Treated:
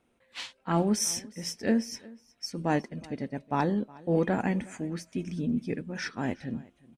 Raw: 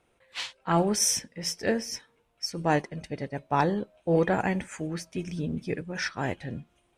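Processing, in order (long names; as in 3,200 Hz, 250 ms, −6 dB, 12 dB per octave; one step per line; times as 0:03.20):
parametric band 240 Hz +11 dB 0.62 octaves
on a send: single-tap delay 364 ms −22.5 dB
on the sum: level −4.5 dB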